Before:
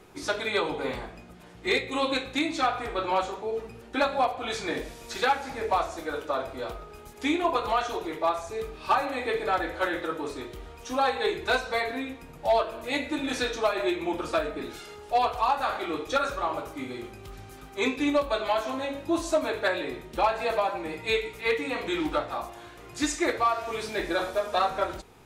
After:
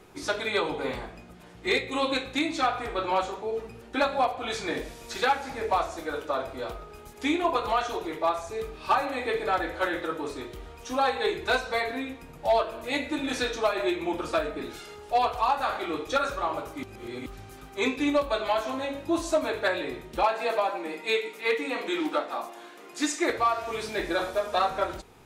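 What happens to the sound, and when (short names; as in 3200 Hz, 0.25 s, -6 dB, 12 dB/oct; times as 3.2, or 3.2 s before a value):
16.83–17.26 reverse
20.23–23.3 steep high-pass 200 Hz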